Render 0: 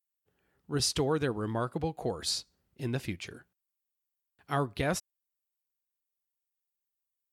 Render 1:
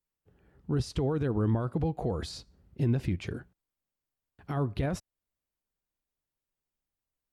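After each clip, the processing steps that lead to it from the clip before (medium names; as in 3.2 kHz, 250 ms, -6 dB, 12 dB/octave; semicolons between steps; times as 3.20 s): in parallel at -0.5 dB: compression, threshold -40 dBFS, peak gain reduction 14.5 dB; on the sum: peak limiter -26 dBFS, peak gain reduction 11 dB; tilt EQ -3 dB/octave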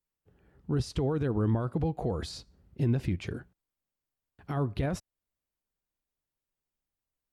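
no audible change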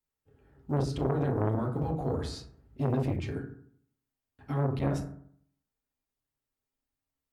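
short-mantissa float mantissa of 6-bit; reverberation RT60 0.60 s, pre-delay 4 ms, DRR -1.5 dB; transformer saturation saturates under 550 Hz; trim -3 dB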